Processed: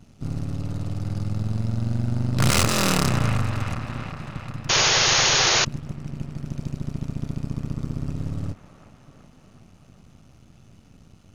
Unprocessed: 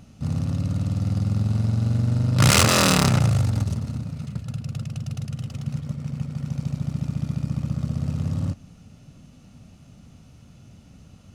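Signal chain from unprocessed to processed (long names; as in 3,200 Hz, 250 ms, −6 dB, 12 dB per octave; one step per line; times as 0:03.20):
gain on one half-wave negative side −12 dB
delay with a band-pass on its return 373 ms, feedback 66%, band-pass 1,300 Hz, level −6.5 dB
sound drawn into the spectrogram noise, 0:04.69–0:05.65, 330–6,900 Hz −19 dBFS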